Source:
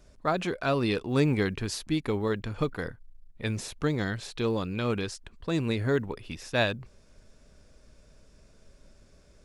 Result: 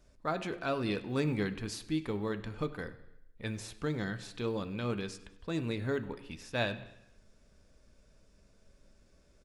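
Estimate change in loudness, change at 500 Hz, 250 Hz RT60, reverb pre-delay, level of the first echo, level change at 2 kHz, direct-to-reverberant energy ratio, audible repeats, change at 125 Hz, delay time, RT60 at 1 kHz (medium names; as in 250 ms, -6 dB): -6.5 dB, -6.5 dB, 0.80 s, 3 ms, -21.5 dB, -6.0 dB, 8.5 dB, 3, -7.0 dB, 98 ms, 0.85 s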